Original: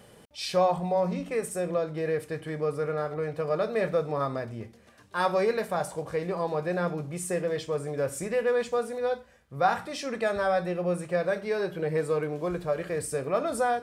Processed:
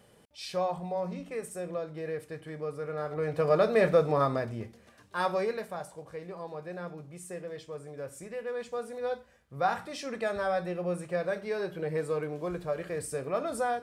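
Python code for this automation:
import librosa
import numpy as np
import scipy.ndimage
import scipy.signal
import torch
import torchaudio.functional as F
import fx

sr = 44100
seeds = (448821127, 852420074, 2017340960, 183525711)

y = fx.gain(x, sr, db=fx.line((2.85, -7.0), (3.44, 3.5), (4.09, 3.5), (5.35, -4.0), (5.91, -11.0), (8.43, -11.0), (9.13, -4.0)))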